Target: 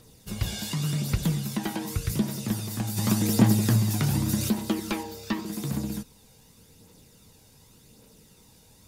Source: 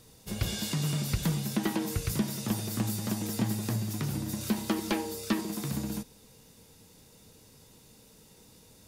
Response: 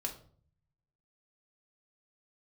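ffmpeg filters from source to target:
-filter_complex "[0:a]asplit=3[s0][s1][s2];[s0]afade=t=out:st=2.96:d=0.02[s3];[s1]acontrast=83,afade=t=in:st=2.96:d=0.02,afade=t=out:st=4.48:d=0.02[s4];[s2]afade=t=in:st=4.48:d=0.02[s5];[s3][s4][s5]amix=inputs=3:normalize=0,asettb=1/sr,asplit=3[s6][s7][s8];[s6]atrim=end=5.034[s9];[s7]atrim=start=5.03:end=5.46,asetpts=PTS-STARTPTS,afade=t=in:d=0.004:c=qsin,afade=t=out:st=0.426:d=0.004:c=qsin,equalizer=f=10000:w=1.1:g=-11[s10];[s8]atrim=start=5.456[s11];[s9][s10]acrossfade=d=0.004:c1=hsin:c2=qsin[s12];[s12][s11]acrossfade=d=0.004:c1=qsin:c2=hsin,aphaser=in_gain=1:out_gain=1:delay=1.4:decay=0.36:speed=0.87:type=triangular"

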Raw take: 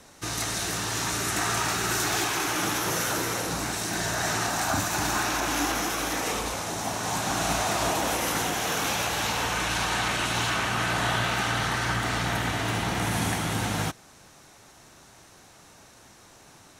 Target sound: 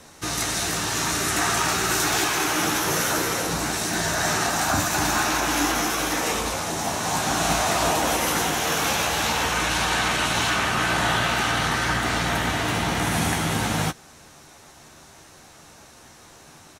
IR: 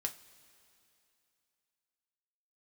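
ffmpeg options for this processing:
-filter_complex "[0:a]asplit=2[s0][s1];[s1]adelay=13,volume=0.398[s2];[s0][s2]amix=inputs=2:normalize=0,volume=1.5"

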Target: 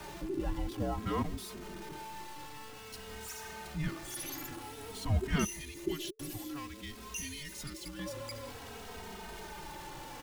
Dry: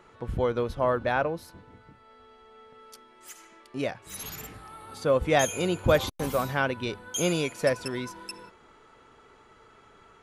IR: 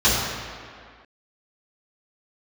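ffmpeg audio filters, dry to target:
-filter_complex "[0:a]aeval=exprs='val(0)+0.5*0.0237*sgn(val(0))':c=same,asettb=1/sr,asplit=3[s0][s1][s2];[s0]atrim=end=5.444[s3];[s1]atrim=start=5.44:end=7.99,asetpts=PTS-STARTPTS,afade=t=in:d=0.004:c=qsin,afade=t=out:st=2.546:d=0.004:c=qsin,acrossover=split=130|3000[s4][s5][s6];[s5]acompressor=threshold=0.0141:ratio=6[s7];[s4][s7][s6]amix=inputs=3:normalize=0[s8];[s2]atrim=start=7.986[s9];[s3][s8]acrossfade=d=0.004:c1=hsin:c2=qsin[s10];[s10][s9]acrossfade=d=0.004:c1=qsin:c2=hsin,afreqshift=-440,asplit=2[s11][s12];[s12]adelay=2.9,afreqshift=-0.52[s13];[s11][s13]amix=inputs=2:normalize=1,volume=0.562"

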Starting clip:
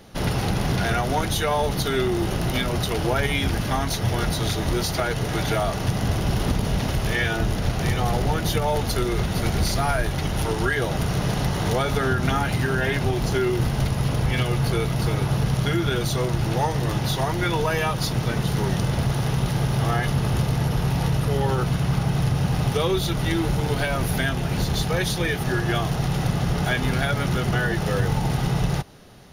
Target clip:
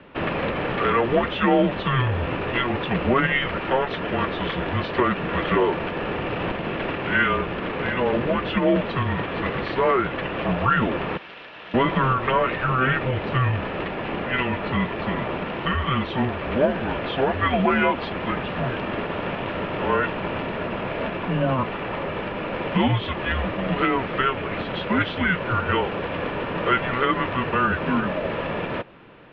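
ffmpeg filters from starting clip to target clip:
-filter_complex "[0:a]asettb=1/sr,asplit=3[s0][s1][s2];[s0]atrim=end=11.174[s3];[s1]atrim=start=11.17:end=11.74,asetpts=PTS-STARTPTS,afade=t=in:d=0.004:c=qsin,afade=t=out:st=0.566:d=0.004:c=qsin,aderivative[s4];[s2]atrim=start=11.736[s5];[s3][s4]acrossfade=d=0.004:c1=hsin:c2=qsin[s6];[s6][s5]acrossfade=d=0.004:c1=qsin:c2=hsin,highpass=f=400:t=q:w=0.5412,highpass=f=400:t=q:w=1.307,lowpass=f=3100:t=q:w=0.5176,lowpass=f=3100:t=q:w=0.7071,lowpass=f=3100:t=q:w=1.932,afreqshift=-260,volume=1.88"

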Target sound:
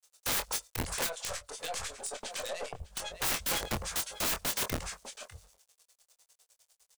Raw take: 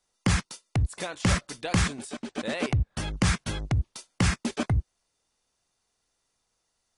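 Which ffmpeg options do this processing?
-filter_complex "[0:a]asplit=2[s0][s1];[s1]highpass=f=720:p=1,volume=6.31,asoftclip=type=tanh:threshold=0.2[s2];[s0][s2]amix=inputs=2:normalize=0,lowpass=f=5900:p=1,volume=0.501,bandreject=f=50:t=h:w=4,bandreject=f=100:t=h:w=4,bandreject=f=150:t=h:w=4,bandreject=f=200:t=h:w=4,acrossover=split=1500[s3][s4];[s3]aeval=exprs='val(0)*(1-1/2+1/2*cos(2*PI*9.9*n/s))':c=same[s5];[s4]aeval=exprs='val(0)*(1-1/2-1/2*cos(2*PI*9.9*n/s))':c=same[s6];[s5][s6]amix=inputs=2:normalize=0,aecho=1:1:601:0.133,acrusher=bits=10:mix=0:aa=0.000001,aeval=exprs='(tanh(14.1*val(0)+0.75)-tanh(0.75))/14.1':c=same,equalizer=f=330:w=1.5:g=-7.5,acontrast=42,equalizer=f=125:t=o:w=1:g=-9,equalizer=f=250:t=o:w=1:g=-11,equalizer=f=500:t=o:w=1:g=10,equalizer=f=2000:t=o:w=1:g=-4,equalizer=f=8000:t=o:w=1:g=8,asplit=3[s7][s8][s9];[s7]afade=t=out:st=1.06:d=0.02[s10];[s8]acompressor=threshold=0.0126:ratio=8,afade=t=in:st=1.06:d=0.02,afade=t=out:st=3.2:d=0.02[s11];[s9]afade=t=in:st=3.2:d=0.02[s12];[s10][s11][s12]amix=inputs=3:normalize=0,aeval=exprs='(mod(23.7*val(0)+1,2)-1)/23.7':c=same,asplit=2[s13][s14];[s14]adelay=24,volume=0.447[s15];[s13][s15]amix=inputs=2:normalize=0,volume=1.26"

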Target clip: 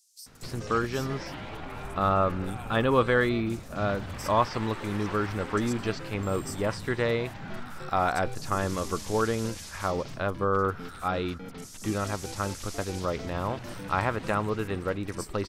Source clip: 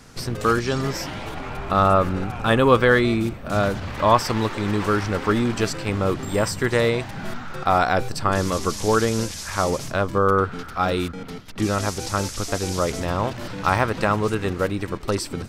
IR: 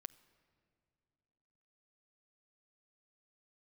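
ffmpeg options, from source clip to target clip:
-filter_complex "[0:a]acrossover=split=5300[s0][s1];[s0]adelay=260[s2];[s2][s1]amix=inputs=2:normalize=0,volume=0.447"

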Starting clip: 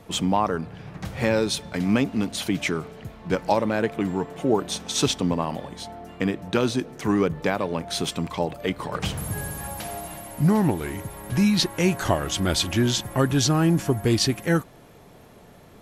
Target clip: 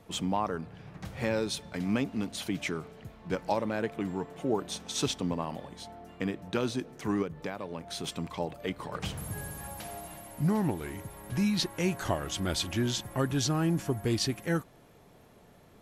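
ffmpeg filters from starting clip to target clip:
-filter_complex "[0:a]asettb=1/sr,asplit=3[s0][s1][s2];[s0]atrim=end=7.224[s3];[s1]atrim=start=7.22:end=8.04,asetpts=PTS-STARTPTS,afade=t=in:d=0.004:c=qsin,afade=t=out:st=0.816:d=0.004:c=qsin,acompressor=threshold=0.0398:ratio=2[s4];[s2]atrim=start=8.036[s5];[s3][s4]acrossfade=d=0.004:c1=hsin:c2=qsin[s6];[s6][s5]acrossfade=d=0.004:c1=qsin:c2=hsin,volume=0.398"

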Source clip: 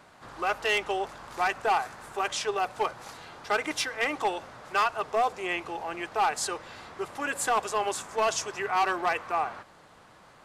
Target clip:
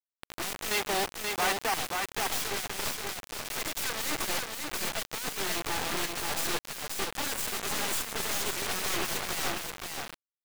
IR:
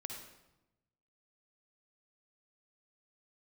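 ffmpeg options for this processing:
-filter_complex "[0:a]aeval=exprs='(tanh(50.1*val(0)+0.6)-tanh(0.6))/50.1':c=same,asettb=1/sr,asplit=3[s0][s1][s2];[s0]atrim=end=0.714[s3];[s1]atrim=start=0.71:end=1.74,asetpts=PTS-STARTPTS,afade=t=in:d=0.004:c=qsin,afade=t=out:st=1.026:d=0.004:c=qsin,highpass=f=130:w=0.5412,highpass=f=130:w=1.3066[s4];[s2]atrim=start=1.736[s5];[s3][s4]acrossfade=d=0.004:c1=hsin:c2=qsin[s6];[s6][s5]acrossfade=d=0.004:c1=qsin:c2=hsin,aeval=exprs='0.0376*sin(PI/2*2*val(0)/0.0376)':c=same,acrusher=bits=4:mix=0:aa=0.000001,aecho=1:1:530:0.631"

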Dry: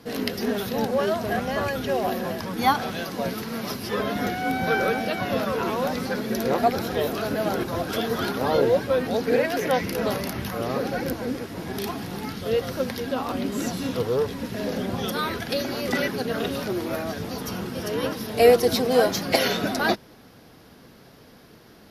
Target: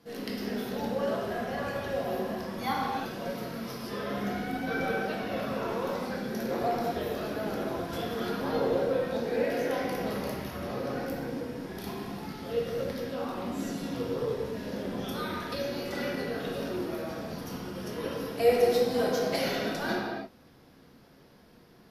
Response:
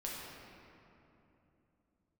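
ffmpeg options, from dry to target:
-filter_complex "[1:a]atrim=start_sample=2205,afade=t=out:st=0.39:d=0.01,atrim=end_sample=17640[s0];[0:a][s0]afir=irnorm=-1:irlink=0,volume=0.398"

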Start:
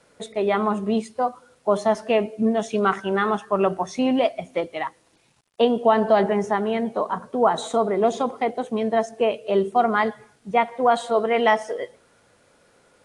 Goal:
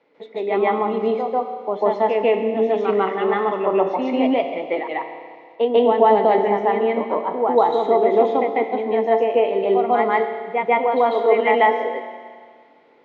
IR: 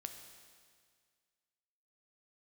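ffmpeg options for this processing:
-filter_complex "[0:a]highpass=210,equalizer=f=290:t=q:w=4:g=10,equalizer=f=450:t=q:w=4:g=8,equalizer=f=850:t=q:w=4:g=8,equalizer=f=1500:t=q:w=4:g=-7,equalizer=f=2100:t=q:w=4:g=9,lowpass=f=3800:w=0.5412,lowpass=f=3800:w=1.3066,asplit=2[s0][s1];[1:a]atrim=start_sample=2205,adelay=145[s2];[s1][s2]afir=irnorm=-1:irlink=0,volume=2.82[s3];[s0][s3]amix=inputs=2:normalize=0,volume=0.398"

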